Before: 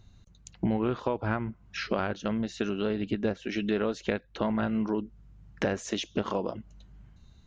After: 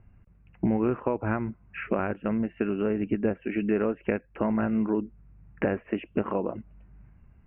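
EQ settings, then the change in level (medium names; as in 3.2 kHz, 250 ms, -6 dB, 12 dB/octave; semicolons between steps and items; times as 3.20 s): dynamic bell 300 Hz, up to +4 dB, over -39 dBFS, Q 1; steep low-pass 2.7 kHz 96 dB/octave; 0.0 dB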